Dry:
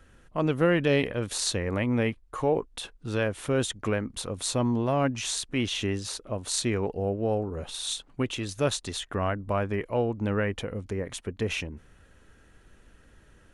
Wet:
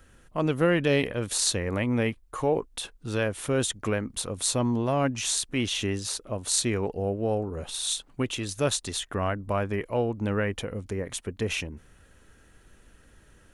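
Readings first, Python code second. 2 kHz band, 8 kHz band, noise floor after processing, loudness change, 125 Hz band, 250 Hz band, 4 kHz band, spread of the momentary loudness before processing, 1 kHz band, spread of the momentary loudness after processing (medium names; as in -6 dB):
+0.5 dB, +4.5 dB, -58 dBFS, +1.0 dB, 0.0 dB, 0.0 dB, +2.0 dB, 8 LU, 0.0 dB, 8 LU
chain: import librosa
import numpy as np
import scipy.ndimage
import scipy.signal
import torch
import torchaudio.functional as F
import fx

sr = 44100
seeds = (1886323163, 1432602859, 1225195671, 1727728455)

y = fx.high_shelf(x, sr, hz=7100.0, db=8.5)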